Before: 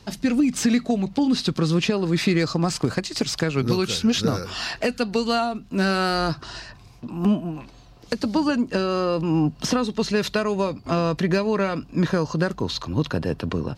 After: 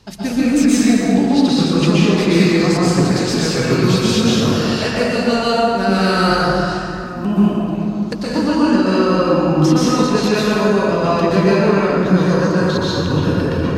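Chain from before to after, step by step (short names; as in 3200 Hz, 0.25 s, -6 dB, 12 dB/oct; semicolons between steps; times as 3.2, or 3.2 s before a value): plate-style reverb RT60 2.8 s, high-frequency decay 0.5×, pre-delay 0.11 s, DRR -8.5 dB; gain -1 dB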